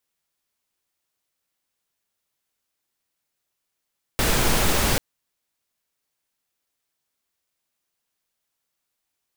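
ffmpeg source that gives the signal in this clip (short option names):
-f lavfi -i "anoisesrc=c=pink:a=0.513:d=0.79:r=44100:seed=1"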